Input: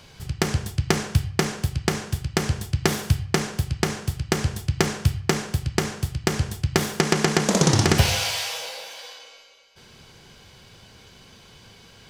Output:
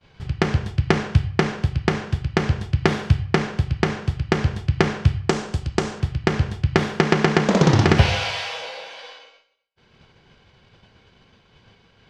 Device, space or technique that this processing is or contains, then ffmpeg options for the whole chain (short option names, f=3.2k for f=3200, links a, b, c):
hearing-loss simulation: -filter_complex "[0:a]lowpass=3.1k,agate=range=-33dB:threshold=-43dB:ratio=3:detection=peak,asettb=1/sr,asplit=3[a][b][c];[a]atrim=end=5.294[d];[b]atrim=start=5.29:end=6,asetpts=PTS-STARTPTS,afade=t=in:d=0.004:c=qsin,afade=t=out:st=0.706:d=0.004:c=qsin,equalizer=f=125:t=o:w=1:g=-6,equalizer=f=2k:t=o:w=1:g=-5,equalizer=f=8k:t=o:w=1:g=9[e];[c]atrim=start=5.996[f];[d][e]acrossfade=d=0.004:c1=hsin:c2=qsin[g];[g][f]acrossfade=d=0.004:c1=qsin:c2=hsin,volume=3.5dB"